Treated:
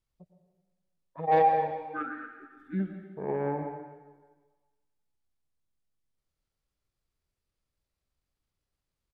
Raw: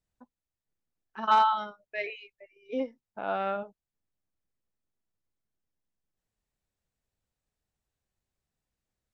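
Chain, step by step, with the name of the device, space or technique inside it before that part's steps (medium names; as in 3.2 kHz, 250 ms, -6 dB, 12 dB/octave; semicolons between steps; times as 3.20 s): monster voice (pitch shift -5.5 st; formant shift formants -3 st; bass shelf 200 Hz +4 dB; reverberation RT60 1.4 s, pre-delay 94 ms, DRR 5.5 dB); trim -1 dB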